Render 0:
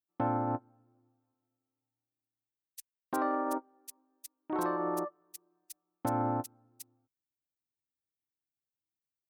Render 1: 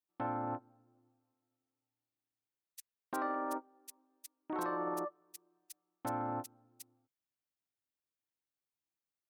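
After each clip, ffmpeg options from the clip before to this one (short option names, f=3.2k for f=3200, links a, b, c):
-filter_complex "[0:a]highshelf=f=4.1k:g=-5,acrossover=split=1300[a][b];[a]alimiter=level_in=6.5dB:limit=-24dB:level=0:latency=1:release=35,volume=-6.5dB[c];[c][b]amix=inputs=2:normalize=0,lowshelf=f=130:g=-6"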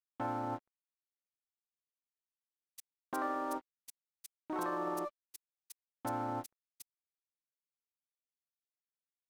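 -af "aeval=exprs='sgn(val(0))*max(abs(val(0))-0.00141,0)':c=same,volume=1dB"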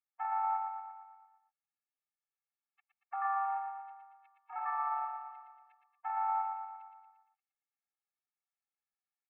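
-filter_complex "[0:a]asuperpass=centerf=1300:order=12:qfactor=0.71,asplit=2[a][b];[b]aecho=0:1:116|232|348|464|580|696|812|928:0.562|0.326|0.189|0.11|0.0636|0.0369|0.0214|0.0124[c];[a][c]amix=inputs=2:normalize=0,afftfilt=real='re*eq(mod(floor(b*sr/1024/230),2),1)':imag='im*eq(mod(floor(b*sr/1024/230),2),1)':win_size=1024:overlap=0.75,volume=3.5dB"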